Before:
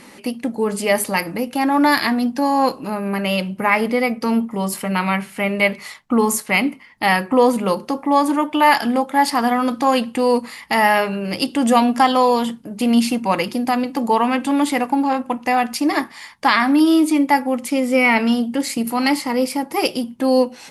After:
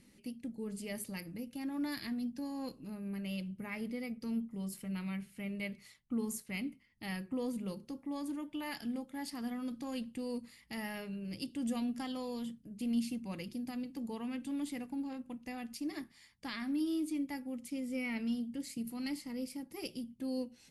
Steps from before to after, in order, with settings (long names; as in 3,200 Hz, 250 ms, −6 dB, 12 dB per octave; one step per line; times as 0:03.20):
guitar amp tone stack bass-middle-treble 10-0-1